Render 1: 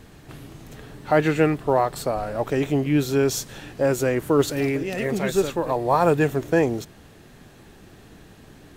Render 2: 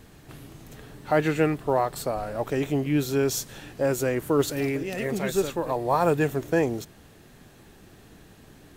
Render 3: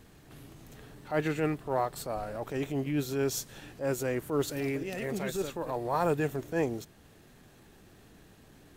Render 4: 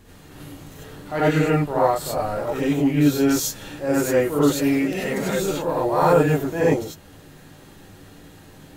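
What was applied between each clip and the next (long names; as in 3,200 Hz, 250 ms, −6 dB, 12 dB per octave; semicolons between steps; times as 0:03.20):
high-shelf EQ 8,800 Hz +5.5 dB; level −3.5 dB
transient designer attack −8 dB, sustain −2 dB; level −4.5 dB
reverb whose tail is shaped and stops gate 120 ms rising, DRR −7 dB; level +3 dB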